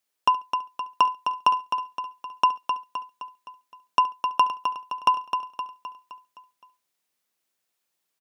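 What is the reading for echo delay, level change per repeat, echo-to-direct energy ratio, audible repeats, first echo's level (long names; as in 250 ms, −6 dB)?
70 ms, repeats not evenly spaced, −5.5 dB, 9, −19.0 dB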